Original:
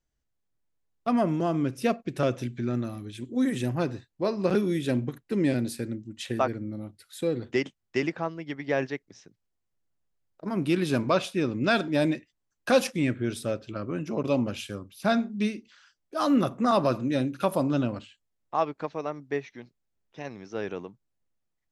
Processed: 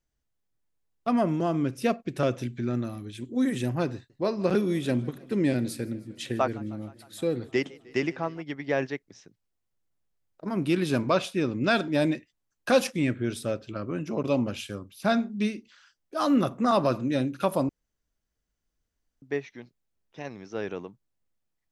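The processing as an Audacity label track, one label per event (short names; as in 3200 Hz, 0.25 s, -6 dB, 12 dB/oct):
3.940000	8.420000	warbling echo 0.155 s, feedback 72%, depth 147 cents, level -23 dB
17.690000	19.220000	room tone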